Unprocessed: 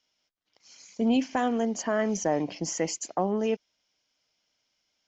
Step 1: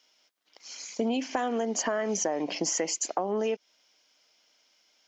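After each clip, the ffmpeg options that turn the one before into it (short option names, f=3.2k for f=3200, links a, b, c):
-filter_complex "[0:a]highpass=300,asplit=2[a][b];[b]alimiter=level_in=2.5dB:limit=-24dB:level=0:latency=1:release=72,volume=-2.5dB,volume=-0.5dB[c];[a][c]amix=inputs=2:normalize=0,acompressor=threshold=-29dB:ratio=10,volume=4dB"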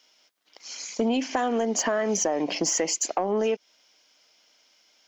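-af "asoftclip=type=tanh:threshold=-17.5dB,volume=4.5dB"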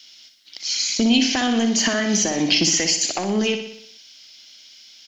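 -filter_complex "[0:a]acrossover=split=3600[a][b];[b]acompressor=threshold=-33dB:ratio=4:attack=1:release=60[c];[a][c]amix=inputs=2:normalize=0,equalizer=f=125:t=o:w=1:g=5,equalizer=f=500:t=o:w=1:g=-11,equalizer=f=1k:t=o:w=1:g=-10,equalizer=f=4k:t=o:w=1:g=11,asplit=2[d][e];[e]aecho=0:1:61|122|183|244|305|366|427:0.398|0.227|0.129|0.0737|0.042|0.024|0.0137[f];[d][f]amix=inputs=2:normalize=0,volume=9dB"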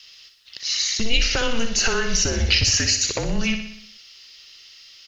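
-af "afreqshift=-230"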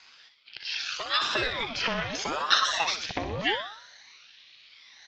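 -af "afftfilt=real='re*pow(10,10/40*sin(2*PI*(1.4*log(max(b,1)*sr/1024/100)/log(2)-(0.91)*(pts-256)/sr)))':imag='im*pow(10,10/40*sin(2*PI*(1.4*log(max(b,1)*sr/1024/100)/log(2)-(0.91)*(pts-256)/sr)))':win_size=1024:overlap=0.75,highpass=120,equalizer=f=160:t=q:w=4:g=-7,equalizer=f=250:t=q:w=4:g=-9,equalizer=f=450:t=q:w=4:g=-8,equalizer=f=1.3k:t=q:w=4:g=-6,lowpass=f=3.7k:w=0.5412,lowpass=f=3.7k:w=1.3066,aeval=exprs='val(0)*sin(2*PI*710*n/s+710*0.7/0.77*sin(2*PI*0.77*n/s))':c=same"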